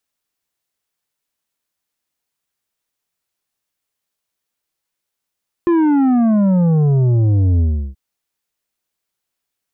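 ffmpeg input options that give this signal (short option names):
-f lavfi -i "aevalsrc='0.266*clip((2.28-t)/0.35,0,1)*tanh(2.51*sin(2*PI*350*2.28/log(65/350)*(exp(log(65/350)*t/2.28)-1)))/tanh(2.51)':d=2.28:s=44100"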